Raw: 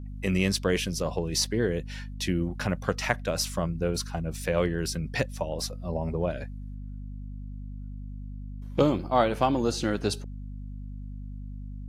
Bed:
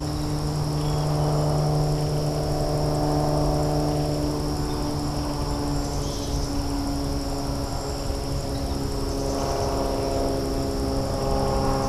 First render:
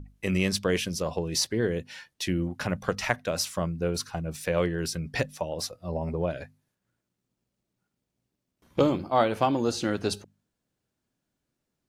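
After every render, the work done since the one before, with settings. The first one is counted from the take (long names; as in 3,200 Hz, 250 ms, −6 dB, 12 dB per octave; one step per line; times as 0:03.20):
mains-hum notches 50/100/150/200/250 Hz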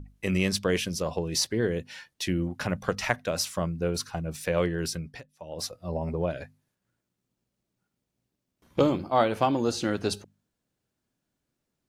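0:04.93–0:05.66: duck −22.5 dB, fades 0.29 s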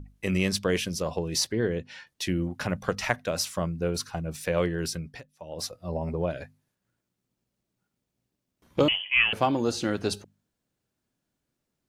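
0:01.52–0:02.07: high-frequency loss of the air 74 metres
0:08.88–0:09.33: voice inversion scrambler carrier 3,200 Hz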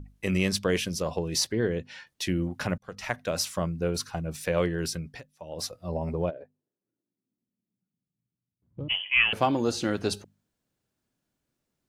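0:02.78–0:03.32: fade in
0:06.29–0:08.89: resonant band-pass 490 Hz → 100 Hz, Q 2.4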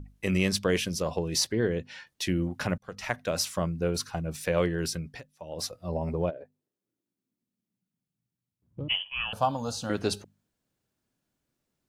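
0:09.03–0:09.90: phaser with its sweep stopped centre 860 Hz, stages 4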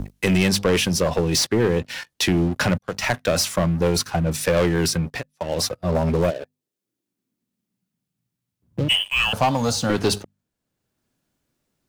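leveller curve on the samples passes 3
multiband upward and downward compressor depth 40%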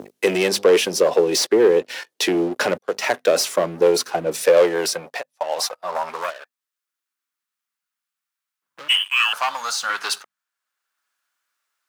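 high-pass filter sweep 410 Hz → 1,300 Hz, 0:04.31–0:06.56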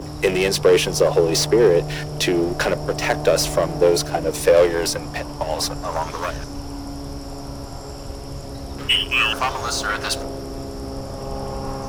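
mix in bed −5 dB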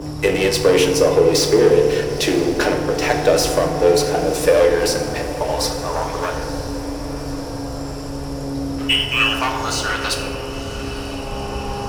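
feedback delay with all-pass diffusion 958 ms, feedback 66%, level −14 dB
feedback delay network reverb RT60 1.4 s, low-frequency decay 1.55×, high-frequency decay 0.55×, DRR 2.5 dB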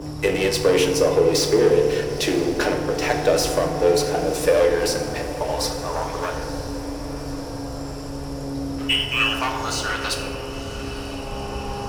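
level −3.5 dB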